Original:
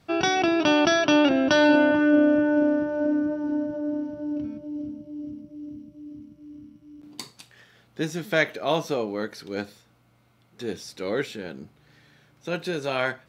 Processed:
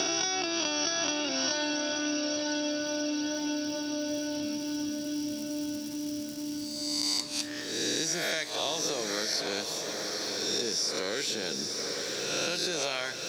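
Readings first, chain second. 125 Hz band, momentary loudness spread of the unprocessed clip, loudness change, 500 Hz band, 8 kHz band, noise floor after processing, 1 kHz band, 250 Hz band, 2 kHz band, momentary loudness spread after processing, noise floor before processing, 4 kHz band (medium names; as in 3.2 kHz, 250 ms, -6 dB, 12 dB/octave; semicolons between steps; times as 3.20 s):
-9.5 dB, 21 LU, -6.5 dB, -9.0 dB, no reading, -37 dBFS, -9.0 dB, -9.5 dB, -7.0 dB, 6 LU, -61 dBFS, +3.5 dB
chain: reverse spectral sustain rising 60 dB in 0.82 s; peaking EQ 5.4 kHz +13.5 dB 1.1 oct; crackle 370 per s -51 dBFS; compression, threshold -30 dBFS, peak gain reduction 17 dB; tone controls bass -6 dB, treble +7 dB; echo that smears into a reverb 923 ms, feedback 48%, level -8 dB; three bands compressed up and down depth 70%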